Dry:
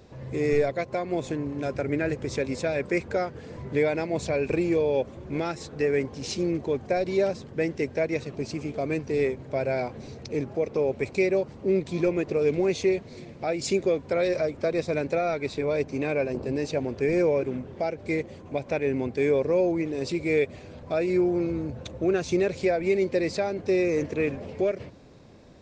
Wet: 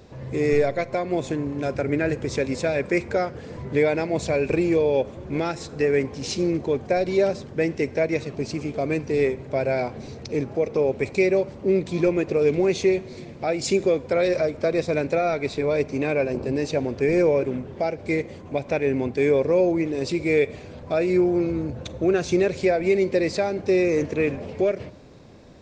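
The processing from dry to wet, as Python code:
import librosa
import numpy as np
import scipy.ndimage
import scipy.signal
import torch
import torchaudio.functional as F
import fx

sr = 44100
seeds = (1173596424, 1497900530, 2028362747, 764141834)

y = fx.rev_schroeder(x, sr, rt60_s=0.72, comb_ms=33, drr_db=19.5)
y = y * 10.0 ** (3.5 / 20.0)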